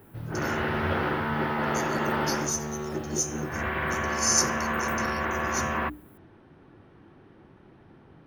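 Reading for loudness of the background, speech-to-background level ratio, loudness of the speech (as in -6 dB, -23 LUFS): -28.5 LUFS, -2.0 dB, -30.5 LUFS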